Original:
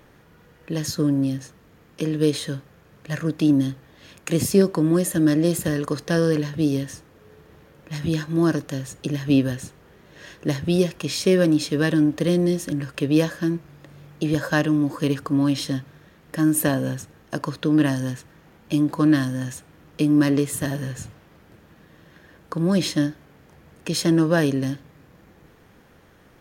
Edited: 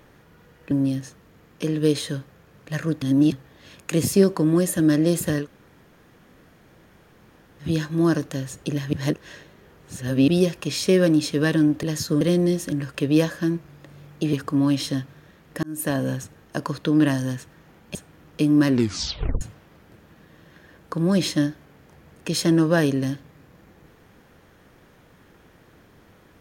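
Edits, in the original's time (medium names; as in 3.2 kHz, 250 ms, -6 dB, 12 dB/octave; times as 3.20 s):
0.71–1.09 s: move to 12.21 s
3.40–3.70 s: reverse
5.81–8.02 s: room tone, crossfade 0.10 s
9.31–10.66 s: reverse
14.33–15.11 s: delete
16.41–16.81 s: fade in
18.73–19.55 s: delete
20.28 s: tape stop 0.73 s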